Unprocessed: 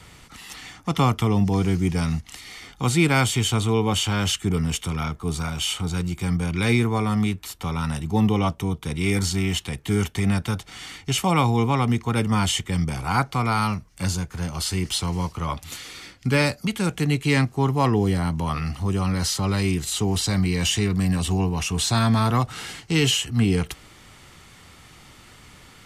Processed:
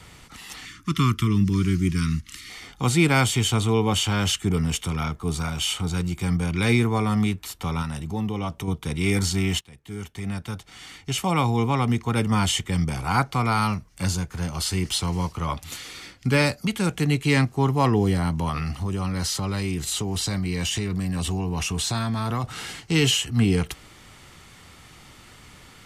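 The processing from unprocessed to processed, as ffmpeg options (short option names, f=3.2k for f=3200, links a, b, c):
-filter_complex "[0:a]asettb=1/sr,asplit=3[a][b][c];[a]atrim=end=0.654[d];[b]atrim=start=0.65:end=2.5,asetpts=PTS-STARTPTS,afade=t=in:d=0.004:c=qsin,afade=t=out:st=1.846:d=0.004:c=qsin,asuperstop=centerf=650:order=8:qfactor=0.89[e];[c]atrim=start=2.496[f];[d][e]acrossfade=d=0.004:c1=hsin:c2=qsin[g];[g][f]acrossfade=d=0.004:c1=qsin:c2=hsin,asettb=1/sr,asplit=3[h][i][j];[h]atrim=end=7.824[k];[i]atrim=start=7.82:end=8.68,asetpts=PTS-STARTPTS,afade=t=in:d=0.004:c=qsin,afade=t=out:st=0.856:d=0.004:c=qsin,acompressor=threshold=-29dB:ratio=2:attack=3.2:release=140:knee=1:detection=peak[l];[j]atrim=start=8.676[m];[k][l]acrossfade=d=0.004:c1=hsin:c2=qsin[n];[n][m]acrossfade=d=0.004:c1=qsin:c2=hsin,asettb=1/sr,asplit=3[o][p][q];[o]atrim=end=18.494[r];[p]atrim=start=18.49:end=22.44,asetpts=PTS-STARTPTS,afade=t=in:d=0.004:c=qsin,afade=t=out:st=3.946:d=0.004:c=qsin,acompressor=threshold=-22dB:ratio=6:attack=3.2:release=140:knee=1:detection=peak[s];[q]atrim=start=22.436[t];[r][s]acrossfade=d=0.004:c1=hsin:c2=qsin[u];[u][t]acrossfade=d=0.004:c1=qsin:c2=hsin,asplit=2[v][w];[v]atrim=end=9.61,asetpts=PTS-STARTPTS,afade=t=out:st=9.606:d=0.004:c=hsin:silence=0.0891251[x];[w]atrim=start=9.61,asetpts=PTS-STARTPTS,afade=t=in:d=3.33:c=qsin:silence=0.0891251[y];[x][y]concat=n=2:v=0:a=1"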